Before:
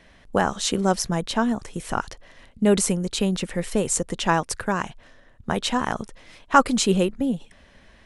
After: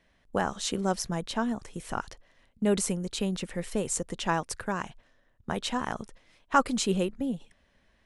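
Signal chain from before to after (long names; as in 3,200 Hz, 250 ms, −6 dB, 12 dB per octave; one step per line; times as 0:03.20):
noise gate −42 dBFS, range −7 dB
level −7 dB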